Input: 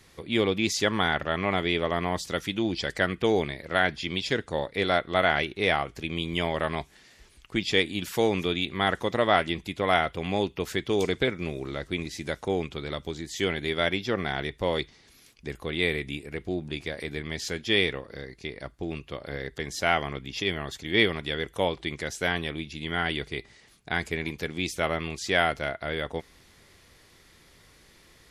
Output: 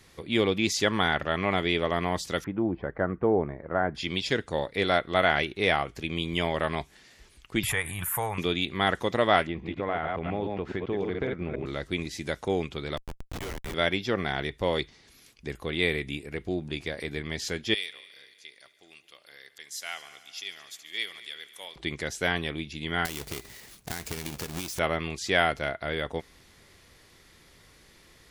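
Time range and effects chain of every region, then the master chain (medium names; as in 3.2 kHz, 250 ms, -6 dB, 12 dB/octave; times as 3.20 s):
2.44–3.95 s: low-pass 1.3 kHz 24 dB/octave + tape noise reduction on one side only encoder only
7.63–8.38 s: FFT filter 120 Hz 0 dB, 280 Hz -23 dB, 1 kHz +5 dB, 1.9 kHz -1 dB, 4.9 kHz -24 dB, 10 kHz +12 dB + swell ahead of each attack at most 25 dB/s
9.47–11.66 s: chunks repeated in reverse 139 ms, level -4.5 dB + low-pass 1.8 kHz + compression 2.5:1, threshold -27 dBFS
12.97–13.74 s: inverse Chebyshev high-pass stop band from 240 Hz + Schmitt trigger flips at -30 dBFS
17.74–21.76 s: differentiator + multi-head delay 72 ms, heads all three, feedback 60%, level -21 dB
23.05–24.79 s: square wave that keeps the level + treble shelf 3.9 kHz +9.5 dB + compression 8:1, threshold -31 dBFS
whole clip: none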